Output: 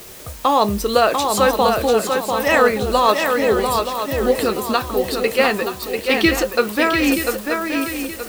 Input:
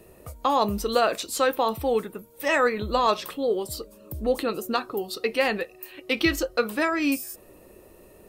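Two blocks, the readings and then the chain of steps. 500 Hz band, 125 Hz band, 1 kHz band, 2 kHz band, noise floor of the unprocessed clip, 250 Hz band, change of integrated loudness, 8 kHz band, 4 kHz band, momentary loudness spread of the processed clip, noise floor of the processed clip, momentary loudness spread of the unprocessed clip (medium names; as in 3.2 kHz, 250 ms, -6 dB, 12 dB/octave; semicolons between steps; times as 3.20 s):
+8.0 dB, +8.5 dB, +8.0 dB, +8.0 dB, -52 dBFS, +8.0 dB, +7.5 dB, +9.0 dB, +8.5 dB, 7 LU, -34 dBFS, 12 LU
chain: shuffle delay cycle 925 ms, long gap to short 3:1, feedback 36%, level -5 dB; added noise white -46 dBFS; trim +6.5 dB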